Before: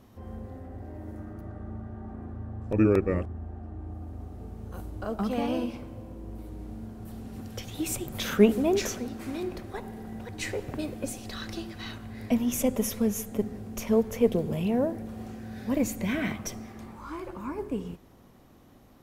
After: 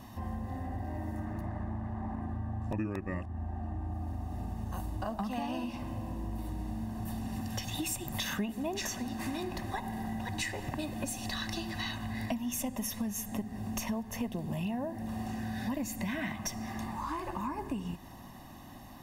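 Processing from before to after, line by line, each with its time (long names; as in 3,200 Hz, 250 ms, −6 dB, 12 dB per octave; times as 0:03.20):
0:01.25–0:02.21: highs frequency-modulated by the lows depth 0.49 ms
whole clip: low-shelf EQ 200 Hz −7 dB; comb filter 1.1 ms, depth 81%; downward compressor 6 to 1, threshold −40 dBFS; level +7 dB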